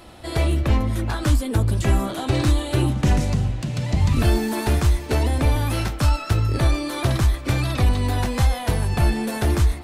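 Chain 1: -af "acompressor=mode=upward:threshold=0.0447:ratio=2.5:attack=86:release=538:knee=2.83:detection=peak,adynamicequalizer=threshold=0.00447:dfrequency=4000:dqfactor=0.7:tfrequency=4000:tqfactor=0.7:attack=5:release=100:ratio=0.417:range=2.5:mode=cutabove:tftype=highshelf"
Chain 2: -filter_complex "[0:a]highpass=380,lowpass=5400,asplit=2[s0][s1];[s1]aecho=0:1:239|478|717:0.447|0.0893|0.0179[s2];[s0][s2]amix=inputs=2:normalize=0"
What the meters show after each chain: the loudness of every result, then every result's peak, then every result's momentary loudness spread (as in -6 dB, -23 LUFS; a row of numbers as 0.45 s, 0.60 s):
-22.0 LUFS, -28.5 LUFS; -8.0 dBFS, -14.0 dBFS; 4 LU, 4 LU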